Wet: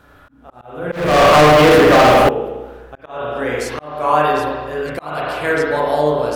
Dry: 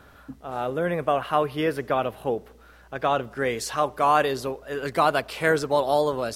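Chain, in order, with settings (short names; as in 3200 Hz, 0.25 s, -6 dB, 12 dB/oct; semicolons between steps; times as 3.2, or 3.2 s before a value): spring tank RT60 1.4 s, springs 33/40 ms, chirp 70 ms, DRR -4.5 dB; 0.92–2.29 sample leveller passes 5; auto swell 0.346 s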